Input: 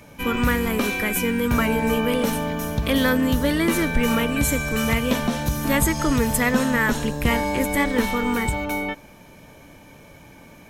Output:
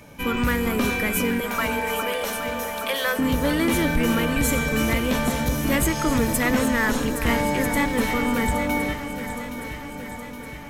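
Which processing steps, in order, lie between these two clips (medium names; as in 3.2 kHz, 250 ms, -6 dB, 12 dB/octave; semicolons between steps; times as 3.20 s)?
1.40–3.19 s: high-pass 520 Hz 24 dB/octave; saturation -14 dBFS, distortion -17 dB; echo whose repeats swap between lows and highs 409 ms, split 1.5 kHz, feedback 78%, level -7 dB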